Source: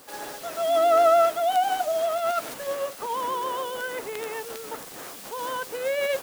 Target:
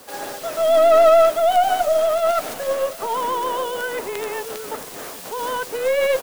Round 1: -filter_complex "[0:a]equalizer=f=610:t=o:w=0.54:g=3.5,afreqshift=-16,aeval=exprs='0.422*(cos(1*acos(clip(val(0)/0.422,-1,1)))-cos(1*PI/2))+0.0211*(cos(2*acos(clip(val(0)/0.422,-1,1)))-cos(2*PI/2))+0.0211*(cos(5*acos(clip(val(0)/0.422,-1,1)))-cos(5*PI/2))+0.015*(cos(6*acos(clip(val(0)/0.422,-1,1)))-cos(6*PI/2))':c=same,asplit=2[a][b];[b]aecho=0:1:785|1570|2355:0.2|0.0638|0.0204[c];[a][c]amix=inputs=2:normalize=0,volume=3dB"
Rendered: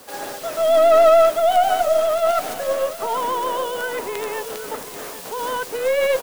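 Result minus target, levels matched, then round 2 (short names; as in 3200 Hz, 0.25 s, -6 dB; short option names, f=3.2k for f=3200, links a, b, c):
echo-to-direct +6.5 dB
-filter_complex "[0:a]equalizer=f=610:t=o:w=0.54:g=3.5,afreqshift=-16,aeval=exprs='0.422*(cos(1*acos(clip(val(0)/0.422,-1,1)))-cos(1*PI/2))+0.0211*(cos(2*acos(clip(val(0)/0.422,-1,1)))-cos(2*PI/2))+0.0211*(cos(5*acos(clip(val(0)/0.422,-1,1)))-cos(5*PI/2))+0.015*(cos(6*acos(clip(val(0)/0.422,-1,1)))-cos(6*PI/2))':c=same,asplit=2[a][b];[b]aecho=0:1:785|1570:0.0944|0.0302[c];[a][c]amix=inputs=2:normalize=0,volume=3dB"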